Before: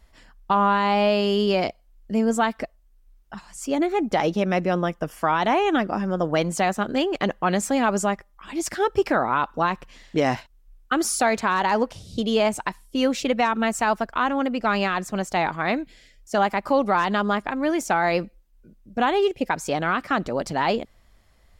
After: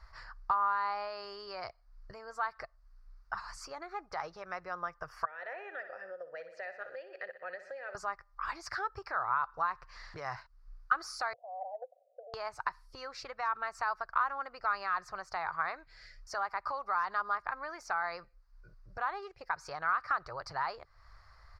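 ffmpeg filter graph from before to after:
-filter_complex "[0:a]asettb=1/sr,asplit=3[a][b][c];[a]atrim=end=5.254[d];[b]atrim=start=5.25:end=7.95,asetpts=PTS-STARTPTS,afade=t=in:d=0.004:c=qsin,afade=t=out:st=2.696:d=0.004:c=qsin,asplit=3[e][f][g];[e]bandpass=f=530:t=q:w=8,volume=0dB[h];[f]bandpass=f=1.84k:t=q:w=8,volume=-6dB[i];[g]bandpass=f=2.48k:t=q:w=8,volume=-9dB[j];[h][i][j]amix=inputs=3:normalize=0,bandreject=f=850:w=11,aecho=1:1:61|122|183|244|305|366:0.251|0.136|0.0732|0.0396|0.0214|0.0115,atrim=end_sample=119070[k];[c]atrim=start=7.946[l];[d][k]acrossfade=d=0.004:c1=hsin:c2=qsin[m];[m][l]acrossfade=d=0.004:c1=qsin:c2=hsin,asettb=1/sr,asplit=3[n][o][p];[n]atrim=end=11.334[q];[o]atrim=start=11.33:end=12.34,asetpts=PTS-STARTPTS,afade=t=in:d=0.004:c=qsin,afade=t=out:st=1.006:d=0.004:c=qsin,asuperpass=centerf=600:order=12:qfactor=2.2,aecho=1:1:5.4:0.37,atrim=end_sample=44541[r];[p]atrim=start=12.336[s];[q][r]acrossfade=d=0.004:c1=hsin:c2=qsin[t];[t][s]acrossfade=d=0.004:c1=qsin:c2=hsin,acompressor=threshold=-38dB:ratio=4,firequalizer=gain_entry='entry(120,0);entry(220,-28);entry(380,-10);entry(1200,12);entry(3200,-14);entry(4600,7);entry(7200,-13);entry(12000,-16)':delay=0.05:min_phase=1"

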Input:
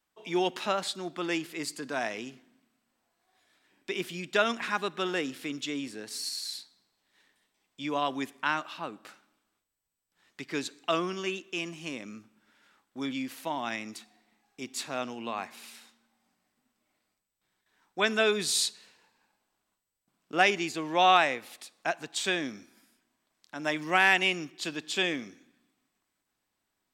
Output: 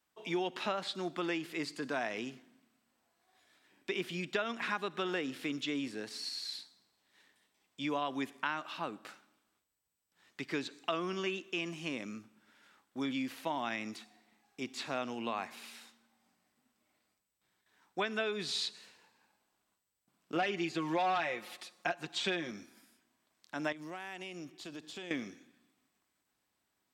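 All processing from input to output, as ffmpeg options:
-filter_complex "[0:a]asettb=1/sr,asplit=3[a][b][c];[a]atrim=end=20.354[d];[b]atrim=start=20.35:end=22.51,asetpts=PTS-STARTPTS,afade=t=in:d=0.004:c=qsin,afade=t=out:st=2.156:d=0.004:c=qsin,aecho=1:1:5.6:0.78,atrim=end_sample=95256,volume=16dB,asoftclip=hard,volume=-16dB[e];[c]atrim=start=22.506[f];[d][e]acrossfade=d=0.004:c1=hsin:c2=qsin[g];[g][f]acrossfade=d=0.004:c1=qsin:c2=hsin,asettb=1/sr,asplit=3[h][i][j];[h]atrim=end=23.724[k];[i]atrim=start=23.72:end=25.11,asetpts=PTS-STARTPTS,afade=t=in:d=0.004:c=qsin,afade=t=out:st=1.386:d=0.004:c=qsin,equalizer=f=2.2k:w=0.65:g=-6.5,acompressor=threshold=-39dB:ratio=6:attack=3.2:release=140:knee=1:detection=peak,aeval=exprs='(tanh(31.6*val(0)+0.45)-tanh(0.45))/31.6':c=same[l];[j]atrim=start=25.106[m];[k][l]acrossfade=d=0.004:c1=hsin:c2=qsin[n];[n][m]acrossfade=d=0.004:c1=qsin:c2=hsin,acrossover=split=4600[o][p];[p]acompressor=threshold=-54dB:ratio=4:attack=1:release=60[q];[o][q]amix=inputs=2:normalize=0,highpass=45,acompressor=threshold=-31dB:ratio=5"

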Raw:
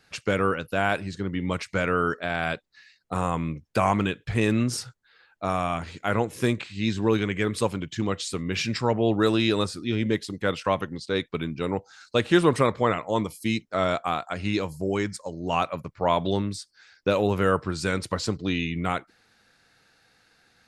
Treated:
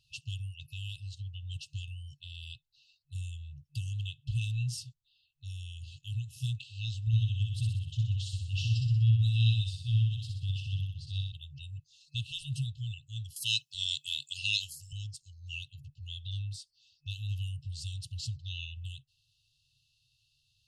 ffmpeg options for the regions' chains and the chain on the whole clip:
-filter_complex "[0:a]asettb=1/sr,asplit=3[a][b][c];[a]atrim=end=7.074[d];[b]atrim=start=7.07:end=11.32,asetpts=PTS-STARTPTS,afade=t=in:d=0.004:c=qsin,afade=t=out:st=4.246:d=0.004:c=qsin,bass=f=250:g=7,treble=f=4k:g=-6,aecho=1:1:62|124|186|248|310|372|434:0.631|0.347|0.191|0.105|0.0577|0.0318|0.0175,atrim=end_sample=187425[e];[c]atrim=start=11.316[f];[d][e]acrossfade=d=0.004:c1=hsin:c2=qsin[g];[g][f]acrossfade=d=0.004:c1=qsin:c2=hsin,asettb=1/sr,asplit=3[h][i][j];[h]atrim=end=13.364[k];[i]atrim=start=13.36:end=14.93,asetpts=PTS-STARTPTS,afade=t=in:d=0.004:c=qsin,afade=t=out:st=1.566:d=0.004:c=qsin,highpass=230,highshelf=f=2.1k:g=11,acontrast=50[l];[j]atrim=start=14.926[m];[k][l]acrossfade=d=0.004:c1=hsin:c2=qsin[n];[n][m]acrossfade=d=0.004:c1=qsin:c2=hsin,lowshelf=f=180:g=-5.5,afftfilt=real='re*(1-between(b*sr/4096,150,2600))':imag='im*(1-between(b*sr/4096,150,2600))':win_size=4096:overlap=0.75,highshelf=f=2.8k:g=-12,volume=1dB"

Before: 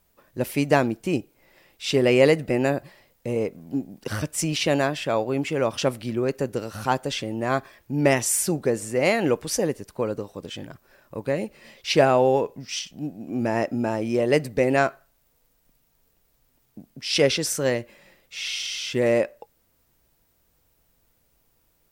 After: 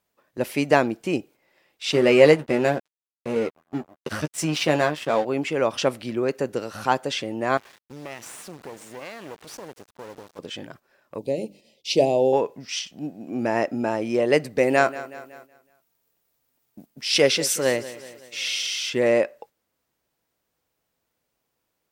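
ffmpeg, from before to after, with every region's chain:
-filter_complex "[0:a]asettb=1/sr,asplit=3[a][b][c];[a]atrim=end=1.924[d];[b]atrim=start=1.92:end=5.25,asetpts=PTS-STARTPTS,afade=t=in:d=0.004:c=qsin,afade=t=out:st=3.326:d=0.004:c=qsin,lowshelf=f=160:g=5.5,aeval=exprs='sgn(val(0))*max(abs(val(0))-0.0178,0)':c=same,asplit=2[e][f];[f]adelay=13,volume=-7dB[g];[e][g]amix=inputs=2:normalize=0,atrim=end_sample=146853[h];[c]atrim=start=5.246[i];[d][h]acrossfade=d=0.004:c1=hsin:c2=qsin[j];[j][i]acrossfade=d=0.004:c1=qsin:c2=hsin,asettb=1/sr,asplit=3[k][l][m];[k]atrim=end=7.574[n];[l]atrim=start=7.57:end=10.39,asetpts=PTS-STARTPTS,afade=t=in:d=0.004:c=qsin,afade=t=out:st=2.816:d=0.004:c=qsin,asubboost=boost=4:cutoff=66,acompressor=threshold=-35dB:ratio=3:attack=3.2:release=140:knee=1:detection=peak,acrusher=bits=5:dc=4:mix=0:aa=0.000001[o];[m]atrim=start=10.386[p];[n][o]acrossfade=d=0.004:c1=hsin:c2=qsin[q];[q][p]acrossfade=d=0.004:c1=qsin:c2=hsin,asettb=1/sr,asplit=3[r][s][t];[r]atrim=end=11.184[u];[s]atrim=start=11.18:end=12.33,asetpts=PTS-STARTPTS,afade=t=in:d=0.004:c=qsin,afade=t=out:st=1.146:d=0.004:c=qsin,agate=range=-33dB:threshold=-51dB:ratio=3:release=100:detection=peak,asuperstop=centerf=1400:order=4:qfactor=0.56,bandreject=f=50:t=h:w=6,bandreject=f=100:t=h:w=6,bandreject=f=150:t=h:w=6,bandreject=f=200:t=h:w=6,bandreject=f=250:t=h:w=6,bandreject=f=300:t=h:w=6[v];[t]atrim=start=12.326[w];[u][v]acrossfade=d=0.004:c1=hsin:c2=qsin[x];[x][w]acrossfade=d=0.004:c1=qsin:c2=hsin,asettb=1/sr,asplit=3[y][z][aa];[y]atrim=end=14.584[ab];[z]atrim=start=14.58:end=18.9,asetpts=PTS-STARTPTS,afade=t=in:d=0.004:c=qsin,afade=t=out:st=4.316:d=0.004:c=qsin,highshelf=f=9.2k:g=11,aecho=1:1:186|372|558|744|930:0.158|0.084|0.0445|0.0236|0.0125,atrim=end_sample=190512[ac];[aa]atrim=start=18.896[ad];[ab][ac]acrossfade=d=0.004:c1=hsin:c2=qsin[ae];[ae][ad]acrossfade=d=0.004:c1=qsin:c2=hsin,highpass=f=280:p=1,agate=range=-8dB:threshold=-48dB:ratio=16:detection=peak,highshelf=f=9k:g=-9,volume=2.5dB"

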